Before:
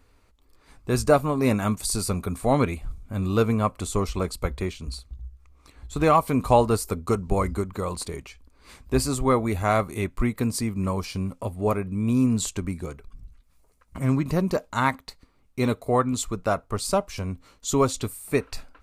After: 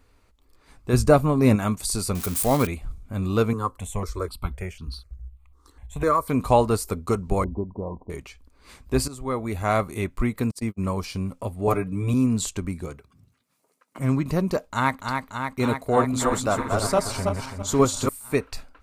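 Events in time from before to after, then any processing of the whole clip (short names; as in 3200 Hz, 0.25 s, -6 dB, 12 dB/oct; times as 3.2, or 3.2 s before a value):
0.93–1.56 low shelf 290 Hz +7.5 dB
2.15–2.67 switching spikes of -20 dBFS
3.53–6.3 step phaser 4 Hz 640–2200 Hz
7.44–8.1 rippled Chebyshev low-pass 1000 Hz, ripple 3 dB
9.08–9.76 fade in, from -15 dB
10.51–10.96 gate -28 dBFS, range -43 dB
11.67–12.14 comb 6.8 ms, depth 98%
12.88–13.98 HPF 64 Hz -> 270 Hz 24 dB/oct
14.6–15.07 echo throw 0.29 s, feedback 80%, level -5 dB
15.8–18.09 regenerating reverse delay 0.166 s, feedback 47%, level -2.5 dB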